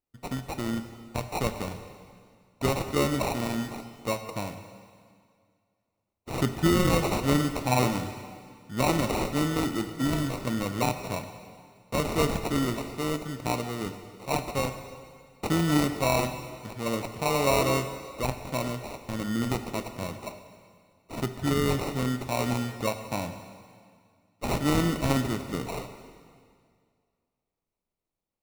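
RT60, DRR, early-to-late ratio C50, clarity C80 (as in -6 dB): 2.1 s, 8.0 dB, 9.0 dB, 10.0 dB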